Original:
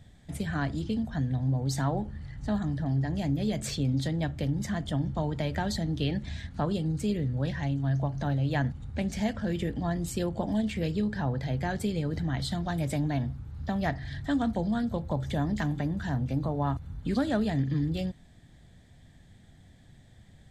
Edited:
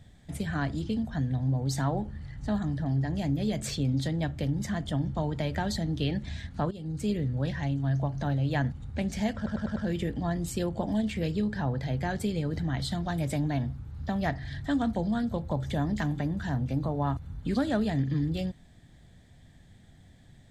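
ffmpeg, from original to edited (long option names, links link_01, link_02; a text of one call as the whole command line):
ffmpeg -i in.wav -filter_complex "[0:a]asplit=6[link_01][link_02][link_03][link_04][link_05][link_06];[link_01]atrim=end=6.71,asetpts=PTS-STARTPTS,afade=type=out:start_time=6.706:duration=0.004:curve=hsin:silence=0.125893[link_07];[link_02]atrim=start=6.71:end=9.462,asetpts=PTS-STARTPTS,afade=type=in:duration=0.37:silence=0.125893[link_08];[link_03]atrim=start=9.358:end=9.462[link_09];[link_04]atrim=start=9.358:end=9.462[link_10];[link_05]atrim=start=9.358:end=9.462[link_11];[link_06]atrim=start=9.358[link_12];[link_07][link_08]concat=n=2:v=0:a=1[link_13];[link_13][link_09]acrossfade=duration=0.004:curve1=hsin:curve2=hsin[link_14];[link_14][link_10]acrossfade=duration=0.004:curve1=hsin:curve2=hsin[link_15];[link_15][link_11]acrossfade=duration=0.004:curve1=hsin:curve2=hsin[link_16];[link_16][link_12]acrossfade=duration=0.004:curve1=hsin:curve2=hsin" out.wav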